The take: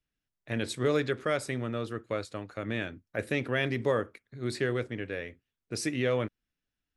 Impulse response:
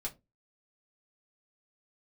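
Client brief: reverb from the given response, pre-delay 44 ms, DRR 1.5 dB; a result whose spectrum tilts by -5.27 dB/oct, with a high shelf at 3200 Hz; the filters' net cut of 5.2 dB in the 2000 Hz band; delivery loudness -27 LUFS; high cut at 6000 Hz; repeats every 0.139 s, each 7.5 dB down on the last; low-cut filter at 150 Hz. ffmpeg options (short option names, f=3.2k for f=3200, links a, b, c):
-filter_complex "[0:a]highpass=150,lowpass=6k,equalizer=f=2k:t=o:g=-4.5,highshelf=f=3.2k:g=-6,aecho=1:1:139|278|417|556|695:0.422|0.177|0.0744|0.0312|0.0131,asplit=2[a][b];[1:a]atrim=start_sample=2205,adelay=44[c];[b][c]afir=irnorm=-1:irlink=0,volume=-1dB[d];[a][d]amix=inputs=2:normalize=0,volume=3dB"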